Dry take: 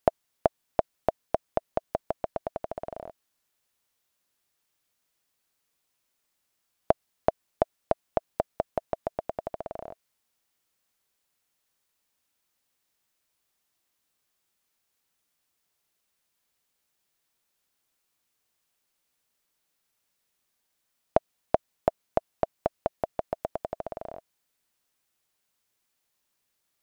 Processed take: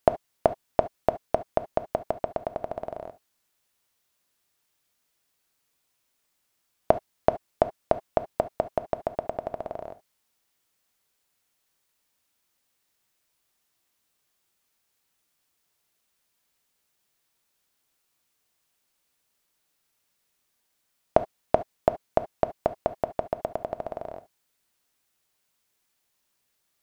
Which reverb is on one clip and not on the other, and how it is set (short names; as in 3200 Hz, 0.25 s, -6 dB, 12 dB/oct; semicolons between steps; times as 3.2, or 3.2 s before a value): non-linear reverb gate 90 ms flat, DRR 11.5 dB; gain +2.5 dB